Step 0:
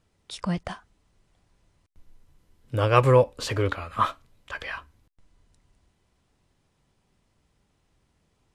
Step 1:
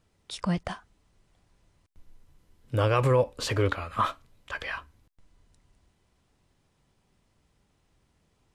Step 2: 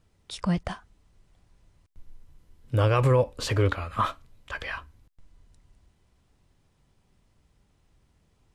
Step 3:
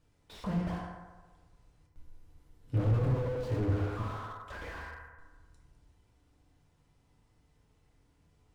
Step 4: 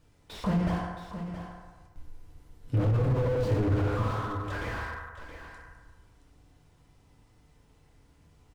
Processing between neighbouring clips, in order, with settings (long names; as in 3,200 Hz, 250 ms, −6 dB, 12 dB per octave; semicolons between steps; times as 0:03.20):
brickwall limiter −14 dBFS, peak gain reduction 9 dB
low-shelf EQ 120 Hz +7 dB
feedback delay network reverb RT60 1.3 s, low-frequency decay 0.8×, high-frequency decay 0.45×, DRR −2 dB; slew-rate limiting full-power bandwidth 20 Hz; level −6 dB
brickwall limiter −25 dBFS, peak gain reduction 7.5 dB; single-tap delay 671 ms −10.5 dB; level +7 dB